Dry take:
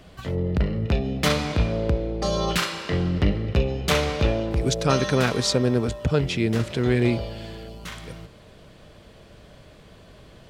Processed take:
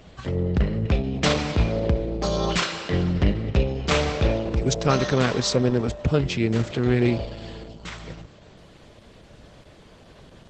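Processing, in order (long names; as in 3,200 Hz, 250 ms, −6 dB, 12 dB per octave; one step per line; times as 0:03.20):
level +1 dB
Opus 12 kbit/s 48,000 Hz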